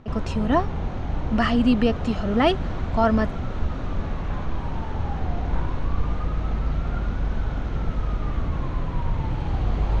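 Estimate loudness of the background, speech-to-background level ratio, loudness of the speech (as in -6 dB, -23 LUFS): -29.0 LUFS, 5.5 dB, -23.5 LUFS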